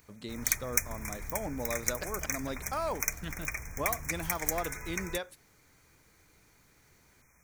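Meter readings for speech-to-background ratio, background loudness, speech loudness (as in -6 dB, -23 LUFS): -4.0 dB, -34.5 LUFS, -38.5 LUFS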